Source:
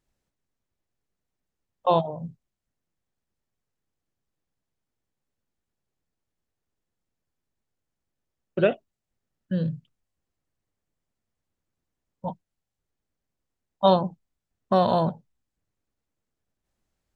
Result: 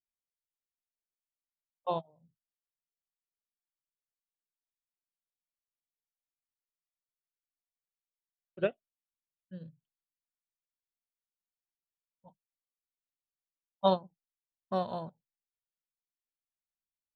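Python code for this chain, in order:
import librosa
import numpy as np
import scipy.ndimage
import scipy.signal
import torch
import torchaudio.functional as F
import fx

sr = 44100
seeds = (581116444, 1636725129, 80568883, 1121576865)

y = fx.upward_expand(x, sr, threshold_db=-31.0, expansion=2.5)
y = y * 10.0 ** (-6.0 / 20.0)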